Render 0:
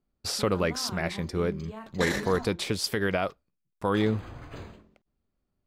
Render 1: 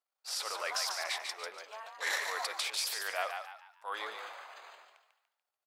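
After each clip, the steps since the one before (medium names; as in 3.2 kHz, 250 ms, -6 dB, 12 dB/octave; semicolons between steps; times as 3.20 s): transient shaper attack -11 dB, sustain +8 dB; inverse Chebyshev high-pass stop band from 150 Hz, stop band 70 dB; frequency-shifting echo 145 ms, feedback 37%, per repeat +63 Hz, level -6 dB; trim -3.5 dB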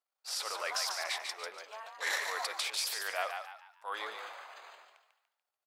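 no audible change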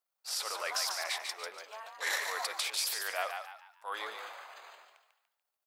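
treble shelf 11 kHz +7.5 dB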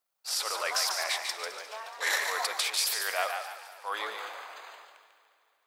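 echo whose repeats swap between lows and highs 106 ms, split 2.2 kHz, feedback 76%, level -13 dB; trim +4.5 dB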